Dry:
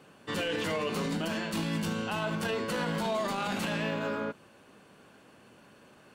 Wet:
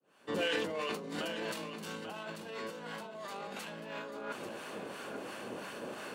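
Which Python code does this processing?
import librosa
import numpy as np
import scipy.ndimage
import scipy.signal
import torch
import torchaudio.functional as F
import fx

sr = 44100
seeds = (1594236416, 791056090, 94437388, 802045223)

p1 = fx.fade_in_head(x, sr, length_s=1.83)
p2 = fx.harmonic_tremolo(p1, sr, hz=2.9, depth_pct=70, crossover_hz=880.0)
p3 = fx.over_compress(p2, sr, threshold_db=-48.0, ratio=-1.0)
p4 = fx.highpass(p3, sr, hz=290.0, slope=6)
p5 = fx.peak_eq(p4, sr, hz=450.0, db=4.5, octaves=1.8)
p6 = p5 + fx.echo_single(p5, sr, ms=840, db=-9.0, dry=0)
y = F.gain(torch.from_numpy(p6), 6.0).numpy()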